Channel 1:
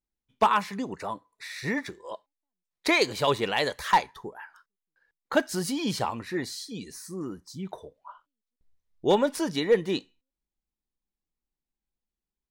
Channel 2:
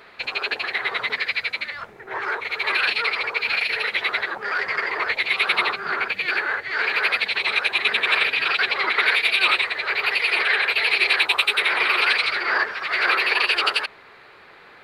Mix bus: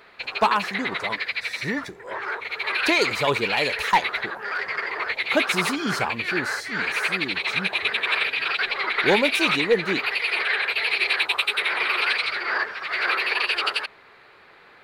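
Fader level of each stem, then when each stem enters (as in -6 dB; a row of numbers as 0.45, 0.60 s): +1.5, -3.5 dB; 0.00, 0.00 s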